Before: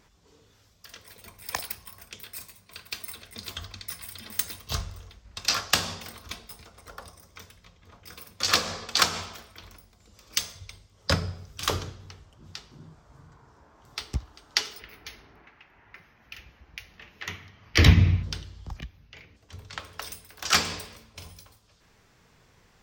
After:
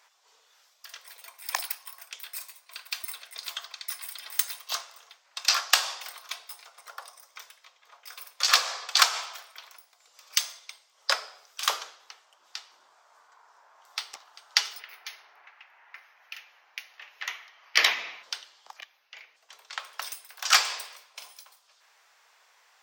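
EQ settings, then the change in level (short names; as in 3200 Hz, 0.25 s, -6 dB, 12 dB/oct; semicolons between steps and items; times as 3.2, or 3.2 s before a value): HPF 690 Hz 24 dB/oct; +2.0 dB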